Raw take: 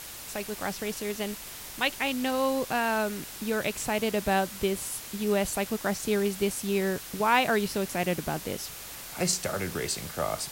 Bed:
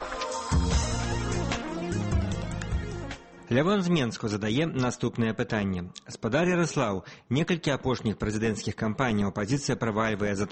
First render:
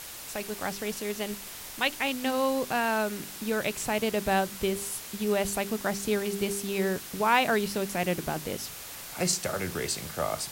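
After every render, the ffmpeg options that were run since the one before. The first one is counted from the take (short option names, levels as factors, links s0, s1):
-af "bandreject=f=50:t=h:w=4,bandreject=f=100:t=h:w=4,bandreject=f=150:t=h:w=4,bandreject=f=200:t=h:w=4,bandreject=f=250:t=h:w=4,bandreject=f=300:t=h:w=4,bandreject=f=350:t=h:w=4,bandreject=f=400:t=h:w=4"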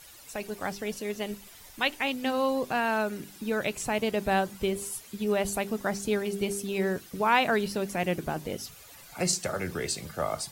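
-af "afftdn=nr=12:nf=-42"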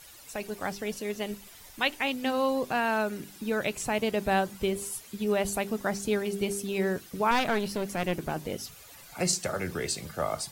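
-filter_complex "[0:a]asettb=1/sr,asplit=3[s0][s1][s2];[s0]atrim=end=7.314[s3];[s1]atrim=start=7.31:end=8.32,asetpts=PTS-STARTPTS,afade=t=in:d=0.004:c=qsin,afade=t=out:st=1.006:d=0.004:c=qsin,aeval=exprs='clip(val(0),-1,0.0237)':c=same[s4];[s2]atrim=start=8.316[s5];[s3][s4]acrossfade=d=0.004:c1=hsin:c2=qsin[s6];[s6][s5]acrossfade=d=0.004:c1=qsin:c2=hsin"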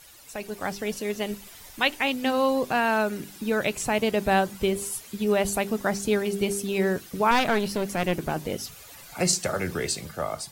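-af "dynaudnorm=f=110:g=11:m=1.58"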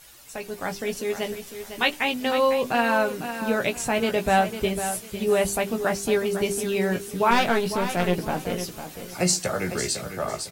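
-filter_complex "[0:a]asplit=2[s0][s1];[s1]adelay=17,volume=0.501[s2];[s0][s2]amix=inputs=2:normalize=0,aecho=1:1:502|1004|1506:0.316|0.0822|0.0214"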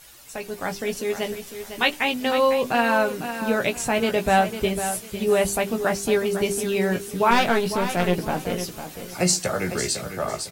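-af "volume=1.19"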